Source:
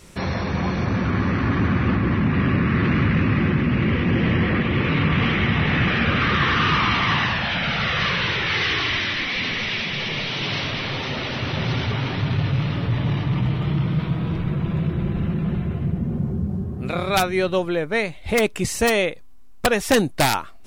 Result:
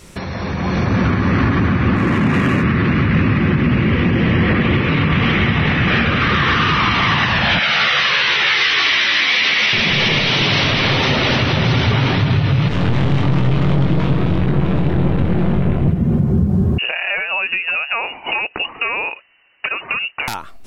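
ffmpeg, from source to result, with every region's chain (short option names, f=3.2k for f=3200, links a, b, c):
-filter_complex "[0:a]asettb=1/sr,asplit=3[a][b][c];[a]atrim=end=1.964[d];[b]atrim=start=1.96:end=2.63,asetpts=PTS-STARTPTS,afade=t=in:d=0.004:c=qsin,afade=t=out:st=0.666:d=0.004:c=qsin,highpass=f=170:p=1,adynamicsmooth=sensitivity=4:basefreq=4.3k,equalizer=f=14k:w=0.42:g=11.5[e];[c]atrim=start=2.626[f];[d][e]acrossfade=d=0.004:c1=hsin:c2=qsin[g];[g][f]acrossfade=d=0.004:c1=qsin:c2=hsin,asettb=1/sr,asplit=3[h][i][j];[h]atrim=end=7.594[k];[i]atrim=start=7.59:end=9.73,asetpts=PTS-STARTPTS,afade=t=in:d=0.004:c=qsin,afade=t=out:st=2.136:d=0.004:c=qsin,highpass=f=1.1k:p=1,asplit=2[l][m];[m]adelay=14,volume=-4dB[n];[l][n]amix=inputs=2:normalize=0,atrim=end_sample=94374[o];[j]atrim=start=9.726[p];[k][o]acrossfade=d=0.004:c1=hsin:c2=qsin[q];[q][p]acrossfade=d=0.004:c1=qsin:c2=hsin,asettb=1/sr,asplit=3[r][s][t];[r]atrim=end=12.684[u];[s]atrim=start=12.68:end=15.88,asetpts=PTS-STARTPTS,afade=t=in:d=0.004:c=qsin,afade=t=out:st=3.196:d=0.004:c=qsin,highshelf=f=3.6k:g=-3.5,aeval=exprs='(tanh(22.4*val(0)+0.8)-tanh(0.8))/22.4':c=same,asplit=2[v][w];[w]adelay=22,volume=-5dB[x];[v][x]amix=inputs=2:normalize=0,atrim=end_sample=141120[y];[t]atrim=start=15.876[z];[u][y]acrossfade=d=0.004:c1=hsin:c2=qsin[aa];[aa][z]acrossfade=d=0.004:c1=qsin:c2=hsin,asettb=1/sr,asplit=3[ab][ac][ad];[ab]atrim=end=16.784[ae];[ac]atrim=start=16.78:end=20.28,asetpts=PTS-STARTPTS,afade=t=in:d=0.004:c=qsin,afade=t=out:st=3.496:d=0.004:c=qsin,highpass=f=370:p=1,acompressor=threshold=-31dB:ratio=16:attack=3.2:release=140:knee=1:detection=peak,lowpass=f=2.6k:t=q:w=0.5098,lowpass=f=2.6k:t=q:w=0.6013,lowpass=f=2.6k:t=q:w=0.9,lowpass=f=2.6k:t=q:w=2.563,afreqshift=-3000[af];[ad]atrim=start=20.276[ag];[ae][af]acrossfade=d=0.004:c1=hsin:c2=qsin[ah];[ah][ag]acrossfade=d=0.004:c1=qsin:c2=hsin,acompressor=threshold=-24dB:ratio=3,alimiter=limit=-21.5dB:level=0:latency=1:release=357,dynaudnorm=f=200:g=7:m=10.5dB,volume=5dB"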